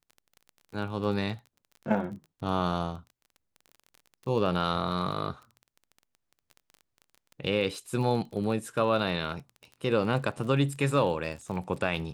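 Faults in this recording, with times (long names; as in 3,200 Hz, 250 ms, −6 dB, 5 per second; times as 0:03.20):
surface crackle 24 per second −38 dBFS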